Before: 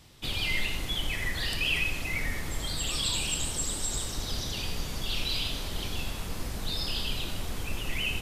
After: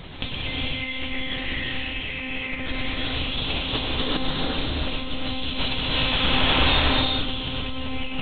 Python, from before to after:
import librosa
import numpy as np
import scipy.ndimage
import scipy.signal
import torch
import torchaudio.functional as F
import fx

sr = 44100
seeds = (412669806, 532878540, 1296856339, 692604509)

p1 = fx.low_shelf(x, sr, hz=480.0, db=-11.5, at=(5.58, 6.81))
p2 = p1 + fx.echo_feedback(p1, sr, ms=345, feedback_pct=45, wet_db=-5, dry=0)
p3 = fx.lpc_monotone(p2, sr, seeds[0], pitch_hz=260.0, order=8)
p4 = fx.peak_eq(p3, sr, hz=71.0, db=-14.0, octaves=0.94, at=(3.64, 4.06))
p5 = fx.over_compress(p4, sr, threshold_db=-40.0, ratio=-1.0)
p6 = fx.rev_gated(p5, sr, seeds[1], gate_ms=420, shape='rising', drr_db=-4.0)
y = F.gain(torch.from_numpy(p6), 8.5).numpy()